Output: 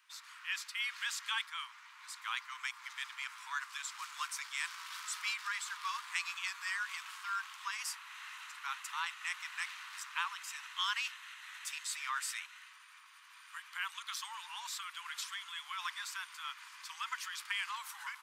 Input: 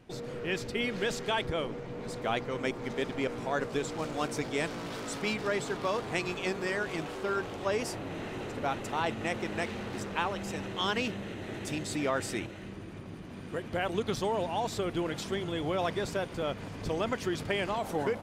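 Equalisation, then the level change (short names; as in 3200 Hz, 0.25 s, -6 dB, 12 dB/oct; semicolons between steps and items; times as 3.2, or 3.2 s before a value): steep high-pass 1000 Hz 72 dB/oct; high shelf 7400 Hz +6.5 dB; -2.5 dB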